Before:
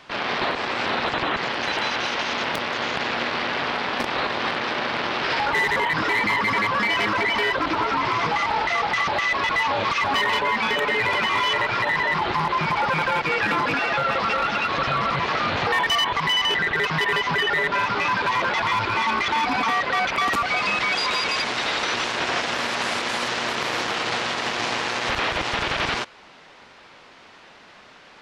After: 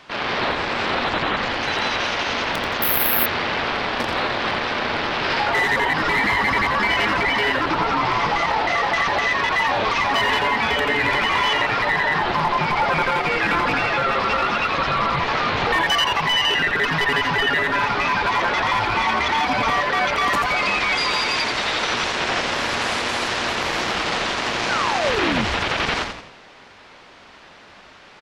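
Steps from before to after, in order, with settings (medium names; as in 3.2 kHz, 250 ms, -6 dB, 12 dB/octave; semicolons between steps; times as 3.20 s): 24.69–25.45 s: painted sound fall 200–1600 Hz -26 dBFS; frequency-shifting echo 85 ms, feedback 43%, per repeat -150 Hz, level -5.5 dB; 2.82–3.26 s: careless resampling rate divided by 3×, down none, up zero stuff; trim +1 dB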